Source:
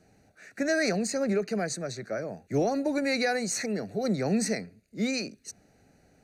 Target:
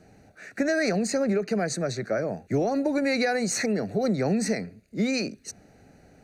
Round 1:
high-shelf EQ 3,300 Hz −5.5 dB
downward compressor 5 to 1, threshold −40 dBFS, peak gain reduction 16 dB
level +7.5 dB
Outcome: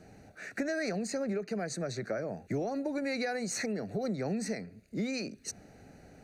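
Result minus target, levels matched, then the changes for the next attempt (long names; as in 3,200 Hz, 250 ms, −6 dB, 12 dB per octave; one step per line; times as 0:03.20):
downward compressor: peak gain reduction +9 dB
change: downward compressor 5 to 1, threshold −29 dBFS, peak gain reduction 7.5 dB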